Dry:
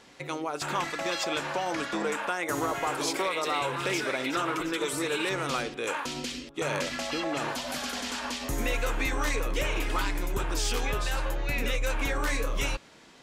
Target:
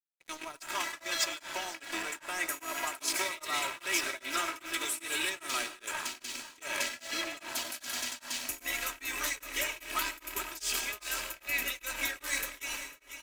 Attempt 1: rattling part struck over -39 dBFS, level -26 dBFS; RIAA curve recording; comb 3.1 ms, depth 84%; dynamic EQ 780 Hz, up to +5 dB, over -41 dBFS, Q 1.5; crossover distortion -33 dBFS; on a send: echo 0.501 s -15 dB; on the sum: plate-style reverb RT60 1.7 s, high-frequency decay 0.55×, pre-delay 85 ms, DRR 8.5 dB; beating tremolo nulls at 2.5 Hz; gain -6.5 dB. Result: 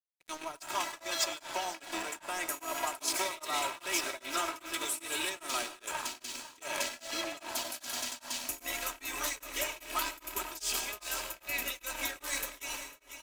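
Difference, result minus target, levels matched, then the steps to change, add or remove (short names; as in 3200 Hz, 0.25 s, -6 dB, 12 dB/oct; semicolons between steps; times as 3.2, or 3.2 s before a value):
1000 Hz band +2.5 dB
change: dynamic EQ 1900 Hz, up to +5 dB, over -41 dBFS, Q 1.5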